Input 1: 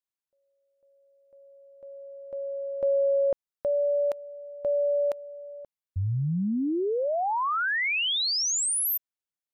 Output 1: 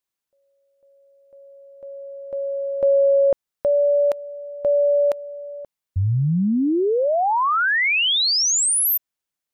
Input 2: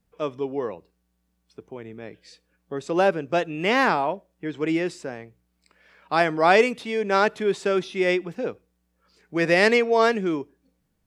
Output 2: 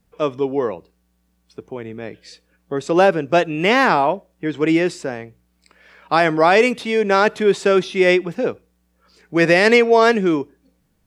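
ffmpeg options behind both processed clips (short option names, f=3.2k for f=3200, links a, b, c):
-af "alimiter=level_in=9dB:limit=-1dB:release=50:level=0:latency=1,volume=-1.5dB"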